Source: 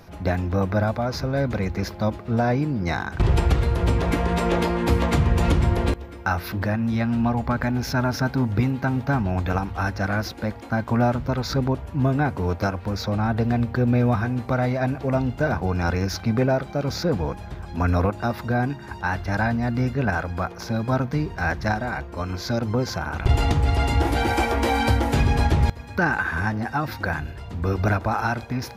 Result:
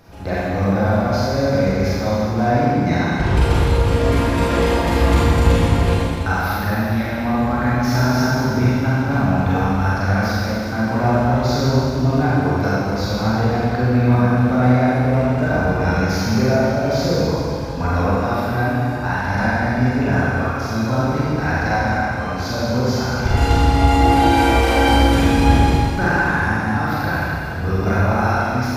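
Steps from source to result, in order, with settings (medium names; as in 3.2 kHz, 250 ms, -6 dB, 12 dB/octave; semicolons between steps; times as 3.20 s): Schroeder reverb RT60 2.5 s, combs from 32 ms, DRR -8.5 dB; trim -3 dB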